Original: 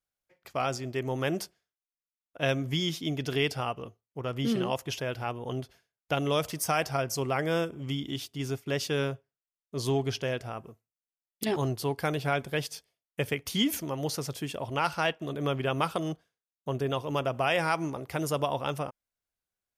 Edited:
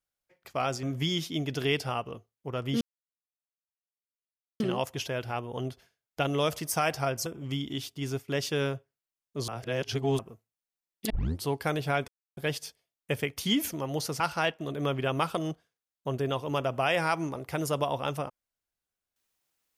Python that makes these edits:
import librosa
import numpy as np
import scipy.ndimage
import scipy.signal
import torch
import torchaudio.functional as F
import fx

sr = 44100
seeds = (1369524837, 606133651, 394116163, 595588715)

y = fx.edit(x, sr, fx.cut(start_s=0.83, length_s=1.71),
    fx.insert_silence(at_s=4.52, length_s=1.79),
    fx.cut(start_s=7.18, length_s=0.46),
    fx.reverse_span(start_s=9.86, length_s=0.71),
    fx.tape_start(start_s=11.48, length_s=0.33),
    fx.insert_silence(at_s=12.46, length_s=0.29),
    fx.cut(start_s=14.29, length_s=0.52), tone=tone)